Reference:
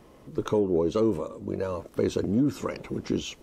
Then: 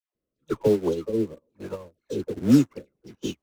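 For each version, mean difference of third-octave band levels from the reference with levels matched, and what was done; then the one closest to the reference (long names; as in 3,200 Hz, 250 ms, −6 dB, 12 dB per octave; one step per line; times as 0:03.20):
12.5 dB: all-pass dispersion lows, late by 149 ms, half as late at 930 Hz
in parallel at −11.5 dB: bit reduction 5 bits
on the sum: rotating-speaker cabinet horn 1.1 Hz
expander for the loud parts 2.5 to 1, over −43 dBFS
level +7 dB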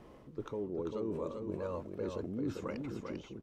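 5.0 dB: fade-out on the ending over 1.14 s
high-shelf EQ 5,200 Hz −11 dB
reversed playback
downward compressor, threshold −34 dBFS, peak gain reduction 14 dB
reversed playback
single-tap delay 395 ms −4.5 dB
level −2 dB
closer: second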